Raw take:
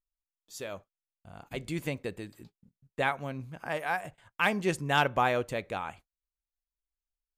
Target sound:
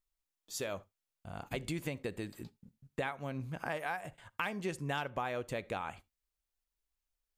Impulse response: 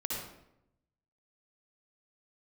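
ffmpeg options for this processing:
-filter_complex "[0:a]acompressor=threshold=-38dB:ratio=6,asplit=2[a][b];[1:a]atrim=start_sample=2205,afade=t=out:st=0.14:d=0.01,atrim=end_sample=6615[c];[b][c]afir=irnorm=-1:irlink=0,volume=-24dB[d];[a][d]amix=inputs=2:normalize=0,volume=3.5dB"

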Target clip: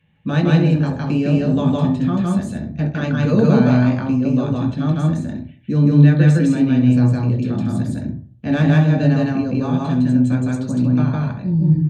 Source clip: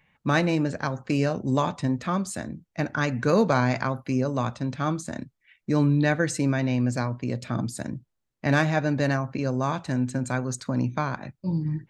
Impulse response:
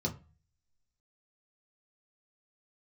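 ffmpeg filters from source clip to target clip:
-filter_complex "[0:a]aecho=1:1:160.3|227.4:1|0.316[a];[1:a]atrim=start_sample=2205,afade=t=out:st=0.34:d=0.01,atrim=end_sample=15435,asetrate=29547,aresample=44100[b];[a][b]afir=irnorm=-1:irlink=0,volume=-7.5dB"

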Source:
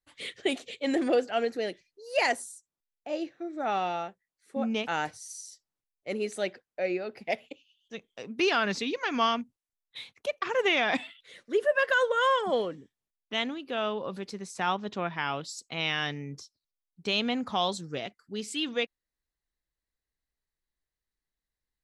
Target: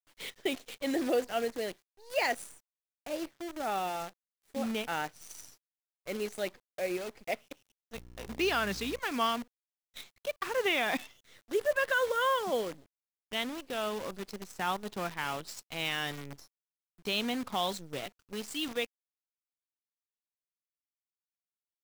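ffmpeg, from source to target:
-filter_complex "[0:a]asettb=1/sr,asplit=3[a][b][c];[a]atrim=end=7.954[d];[b]atrim=start=7.95:end=9,asetpts=PTS-STARTPTS,afade=t=in:d=0.004:c=qsin,afade=t=out:st=1.046:d=0.004:c=qsin,aeval=exprs='val(0)+0.00708*(sin(2*PI*60*n/s)+sin(2*PI*2*60*n/s)/2+sin(2*PI*3*60*n/s)/3+sin(2*PI*4*60*n/s)/4+sin(2*PI*5*60*n/s)/5)':c=same[e];[c]atrim=start=8.996[f];[d][e]acrossfade=d=0.004:c1=hsin:c2=qsin[g];[g][f]acrossfade=d=0.004:c1=qsin:c2=hsin,acrusher=bits=7:dc=4:mix=0:aa=0.000001,volume=-4dB"

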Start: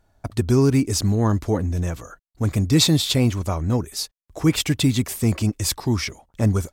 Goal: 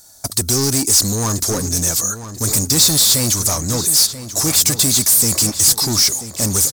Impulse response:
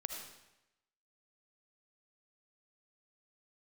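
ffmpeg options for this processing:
-filter_complex "[0:a]bass=f=250:g=7,treble=f=4k:g=13,asplit=2[a][b];[b]highpass=f=720:p=1,volume=27dB,asoftclip=type=tanh:threshold=-3.5dB[c];[a][c]amix=inputs=2:normalize=0,lowpass=f=3.4k:p=1,volume=-6dB,asplit=2[d][e];[e]adelay=986,lowpass=f=3.2k:p=1,volume=-11.5dB,asplit=2[f][g];[g]adelay=986,lowpass=f=3.2k:p=1,volume=0.46,asplit=2[h][i];[i]adelay=986,lowpass=f=3.2k:p=1,volume=0.46,asplit=2[j][k];[k]adelay=986,lowpass=f=3.2k:p=1,volume=0.46,asplit=2[l][m];[m]adelay=986,lowpass=f=3.2k:p=1,volume=0.46[n];[d][f][h][j][l][n]amix=inputs=6:normalize=0,aexciter=amount=3.9:drive=9.5:freq=4.1k,volume=-9.5dB"

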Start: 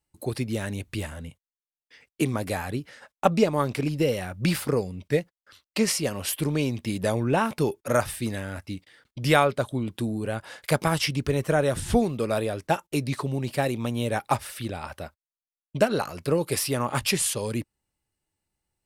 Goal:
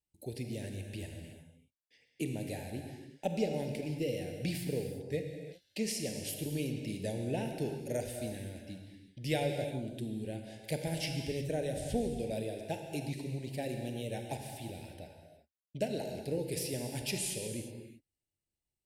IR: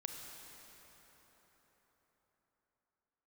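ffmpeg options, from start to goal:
-filter_complex "[0:a]asuperstop=centerf=1200:order=4:qfactor=0.94[a];[1:a]atrim=start_sample=2205,afade=t=out:st=0.43:d=0.01,atrim=end_sample=19404[b];[a][b]afir=irnorm=-1:irlink=0,volume=-8dB"

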